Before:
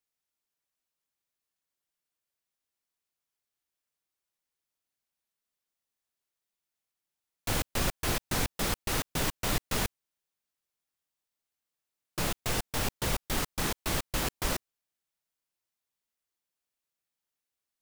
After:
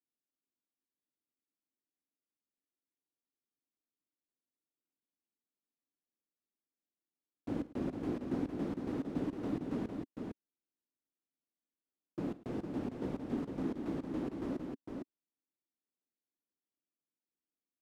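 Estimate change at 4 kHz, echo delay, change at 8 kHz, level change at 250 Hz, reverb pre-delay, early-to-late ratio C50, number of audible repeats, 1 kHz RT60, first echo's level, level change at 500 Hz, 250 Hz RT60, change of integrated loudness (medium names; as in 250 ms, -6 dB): -26.0 dB, 49 ms, under -30 dB, +3.0 dB, no reverb, no reverb, 3, no reverb, -18.0 dB, -4.0 dB, no reverb, -7.5 dB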